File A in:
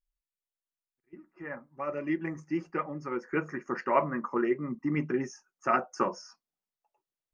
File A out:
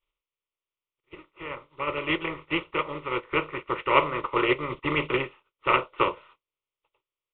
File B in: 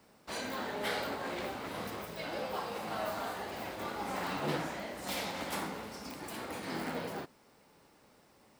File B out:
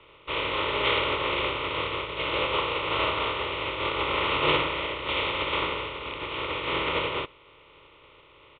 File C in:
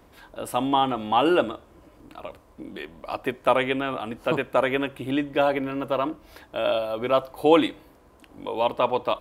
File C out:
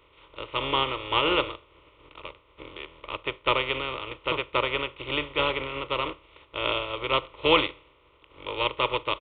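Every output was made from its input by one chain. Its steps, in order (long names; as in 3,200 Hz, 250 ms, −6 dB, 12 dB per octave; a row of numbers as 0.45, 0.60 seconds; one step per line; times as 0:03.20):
compressing power law on the bin magnitudes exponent 0.42
phaser with its sweep stopped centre 1,100 Hz, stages 8
downsampling to 8,000 Hz
loudness normalisation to −27 LKFS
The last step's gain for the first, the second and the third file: +7.0, +15.5, −1.0 decibels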